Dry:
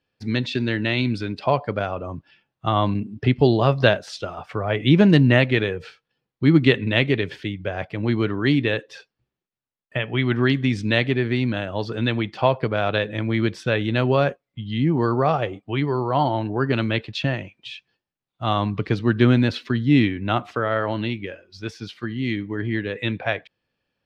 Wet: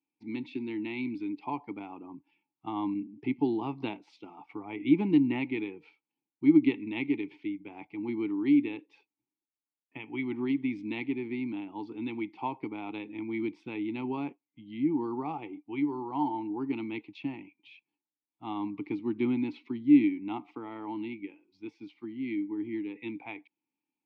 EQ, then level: vowel filter u; peaking EQ 85 Hz -13 dB 0.39 oct; 0.0 dB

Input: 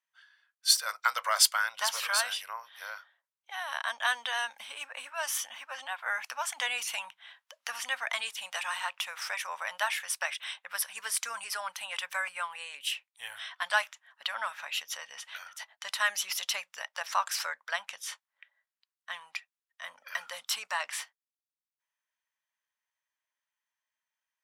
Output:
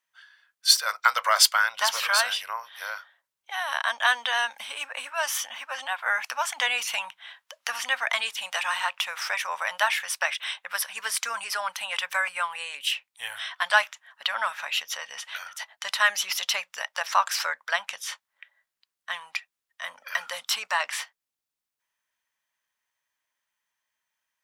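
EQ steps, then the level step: dynamic bell 9.7 kHz, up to -6 dB, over -48 dBFS, Q 0.9; +7.0 dB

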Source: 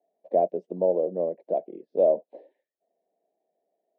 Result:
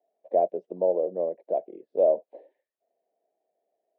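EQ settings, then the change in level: tone controls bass -14 dB, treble -10 dB; peaking EQ 110 Hz +12 dB 0.82 oct; 0.0 dB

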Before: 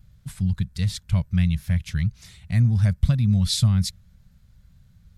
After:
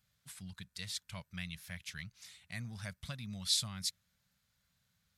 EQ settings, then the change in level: high-pass 1.3 kHz 6 dB/octave; -5.5 dB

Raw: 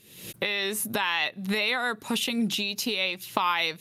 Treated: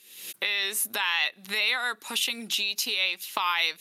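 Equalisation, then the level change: high-pass 370 Hz 12 dB/octave; tilt shelf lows -4 dB, about 1.1 kHz; peaking EQ 550 Hz -4 dB 1.1 oct; -1.0 dB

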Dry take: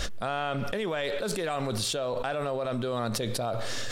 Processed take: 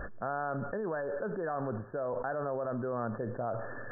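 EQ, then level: brick-wall FIR low-pass 1.8 kHz; bass shelf 67 Hz -9 dB; -3.5 dB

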